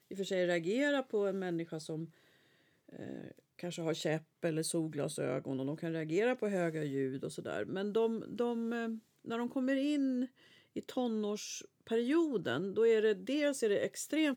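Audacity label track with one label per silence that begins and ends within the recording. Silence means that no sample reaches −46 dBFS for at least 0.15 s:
2.060000	2.890000	silence
3.310000	3.590000	silence
4.190000	4.430000	silence
8.980000	9.250000	silence
10.260000	10.760000	silence
11.650000	11.870000	silence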